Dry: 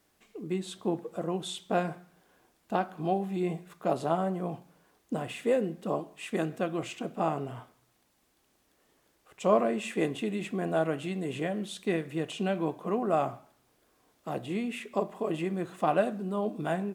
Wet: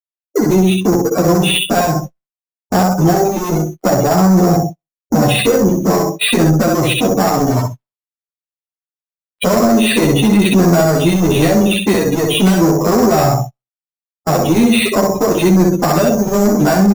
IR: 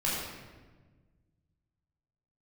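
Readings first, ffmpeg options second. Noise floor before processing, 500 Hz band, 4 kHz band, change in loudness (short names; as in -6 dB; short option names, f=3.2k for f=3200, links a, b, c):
-71 dBFS, +16.5 dB, +23.5 dB, +18.5 dB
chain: -filter_complex "[0:a]aresample=16000,acrusher=bits=6:mix=0:aa=0.000001,aresample=44100,lowpass=4.2k,acrossover=split=200|3000[a][b][c];[b]acompressor=threshold=-32dB:ratio=8[d];[a][d][c]amix=inputs=3:normalize=0,aecho=1:1:64|128|192|256|320:0.631|0.246|0.096|0.0374|0.0146,agate=range=-24dB:threshold=-47dB:ratio=16:detection=peak,afftdn=nr=32:nf=-41,asplit=2[e][f];[f]acompressor=threshold=-43dB:ratio=12,volume=1dB[g];[e][g]amix=inputs=2:normalize=0,acrusher=samples=7:mix=1:aa=0.000001,asoftclip=type=tanh:threshold=-30dB,alimiter=level_in=33dB:limit=-1dB:release=50:level=0:latency=1,asplit=2[h][i];[i]adelay=9.6,afreqshift=-0.62[j];[h][j]amix=inputs=2:normalize=1,volume=-3.5dB"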